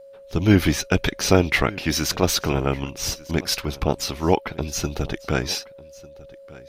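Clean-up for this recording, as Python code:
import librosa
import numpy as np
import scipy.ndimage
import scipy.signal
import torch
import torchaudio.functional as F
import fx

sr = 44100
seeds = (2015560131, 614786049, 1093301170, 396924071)

y = fx.notch(x, sr, hz=550.0, q=30.0)
y = fx.fix_echo_inverse(y, sr, delay_ms=1198, level_db=-21.5)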